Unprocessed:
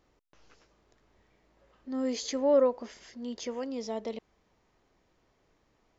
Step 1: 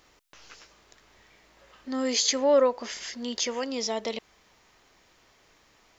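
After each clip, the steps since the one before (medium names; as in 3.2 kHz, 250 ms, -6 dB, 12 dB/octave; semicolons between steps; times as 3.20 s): tilt shelf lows -7 dB; in parallel at -2.5 dB: compression, threshold -40 dBFS, peak gain reduction 16.5 dB; on the sum: trim +5 dB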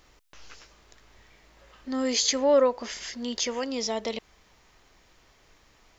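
bass shelf 84 Hz +11.5 dB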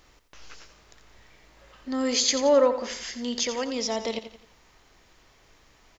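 feedback delay 87 ms, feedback 41%, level -11 dB; trim +1 dB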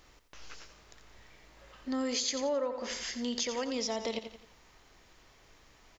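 compression 5:1, threshold -28 dBFS, peak gain reduction 12 dB; trim -2 dB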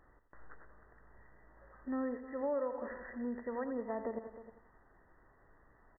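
brick-wall FIR low-pass 2 kHz; delay 310 ms -14 dB; trim -3.5 dB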